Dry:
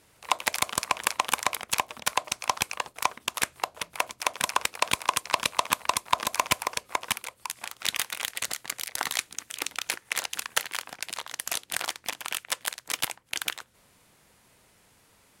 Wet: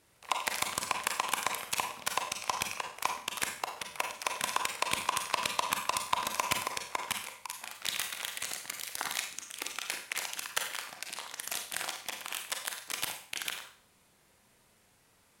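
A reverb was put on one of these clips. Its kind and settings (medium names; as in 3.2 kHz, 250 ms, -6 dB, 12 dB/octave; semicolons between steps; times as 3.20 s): Schroeder reverb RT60 0.49 s, combs from 32 ms, DRR 3.5 dB; trim -6.5 dB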